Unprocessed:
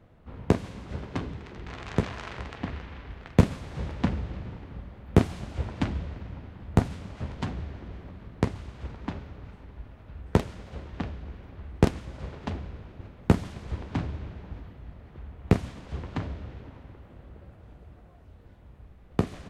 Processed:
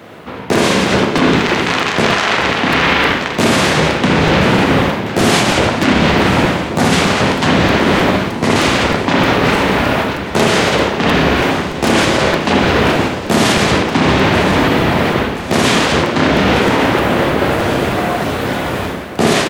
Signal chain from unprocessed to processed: tilt shelf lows -4 dB, about 1.5 kHz; saturation -23.5 dBFS, distortion -5 dB; high-pass 230 Hz 12 dB/octave; on a send at -6 dB: reverberation, pre-delay 57 ms; on the sum: level rider gain up to 16.5 dB; doubling 31 ms -13 dB; reverse; compression 8:1, threshold -35 dBFS, peak gain reduction 21.5 dB; reverse; echo whose repeats swap between lows and highs 514 ms, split 1 kHz, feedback 73%, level -11.5 dB; loudness maximiser +28 dB; crackling interface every 0.31 s, samples 256, repeat, from 0.55 s; trim -1 dB

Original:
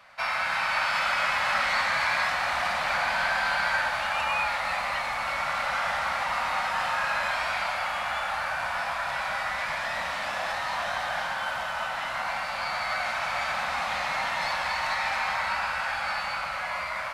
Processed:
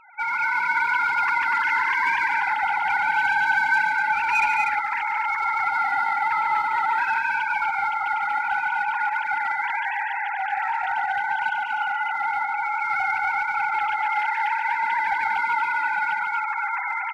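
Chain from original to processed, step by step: formants replaced by sine waves; in parallel at -5.5 dB: hard clipper -26 dBFS, distortion -12 dB; 13.94–14.73 s: on the sum: high-pass 260 Hz -> 540 Hz 12 dB/octave; on a send: loudspeakers at several distances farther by 49 m -7 dB, 83 m -5 dB

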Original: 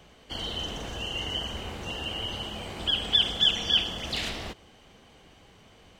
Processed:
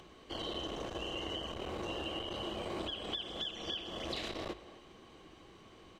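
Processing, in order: compression 12:1, threshold -32 dBFS, peak gain reduction 15.5 dB; dynamic bell 580 Hz, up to +8 dB, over -59 dBFS, Q 1.9; upward compressor, threshold -51 dBFS; treble shelf 11 kHz -8 dB; hum notches 50/100 Hz; small resonant body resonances 340/1100/3900 Hz, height 11 dB, ringing for 40 ms; speakerphone echo 260 ms, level -17 dB; transformer saturation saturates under 430 Hz; trim -4.5 dB

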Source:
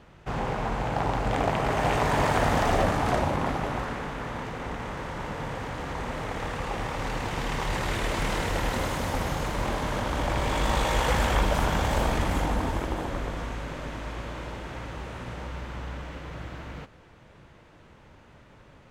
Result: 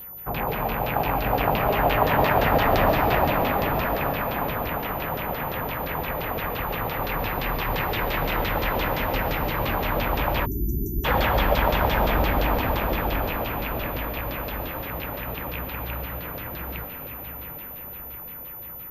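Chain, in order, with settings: rattle on loud lows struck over -33 dBFS, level -26 dBFS; on a send: echo that smears into a reverb 796 ms, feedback 57%, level -8 dB; on the sum: LFO low-pass saw down 5.8 Hz 500–4700 Hz; whistle 14 kHz -37 dBFS; algorithmic reverb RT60 2.4 s, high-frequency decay 0.8×, pre-delay 100 ms, DRR 6.5 dB; spectral selection erased 10.46–11.05 s, 420–5700 Hz

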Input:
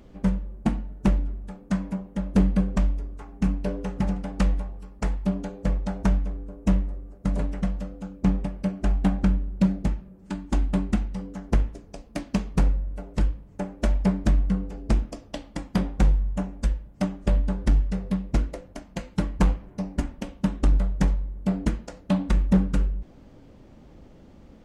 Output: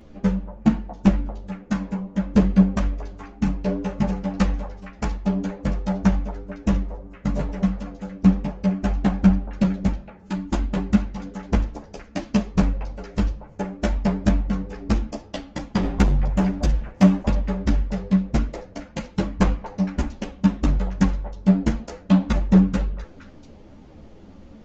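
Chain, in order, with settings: resampled via 16 kHz; 15.83–17.22 s: waveshaping leveller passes 2; repeats whose band climbs or falls 231 ms, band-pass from 690 Hz, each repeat 1.4 oct, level -7.5 dB; three-phase chorus; trim +7 dB

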